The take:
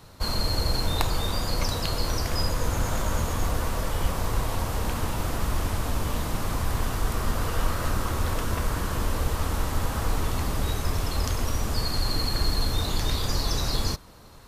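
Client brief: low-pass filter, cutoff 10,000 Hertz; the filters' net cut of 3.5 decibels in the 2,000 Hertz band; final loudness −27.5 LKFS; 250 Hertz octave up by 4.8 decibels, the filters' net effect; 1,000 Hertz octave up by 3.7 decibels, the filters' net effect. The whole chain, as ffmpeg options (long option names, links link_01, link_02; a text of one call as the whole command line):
ffmpeg -i in.wav -af "lowpass=10000,equalizer=frequency=250:width_type=o:gain=6,equalizer=frequency=1000:width_type=o:gain=6,equalizer=frequency=2000:width_type=o:gain=-7.5" out.wav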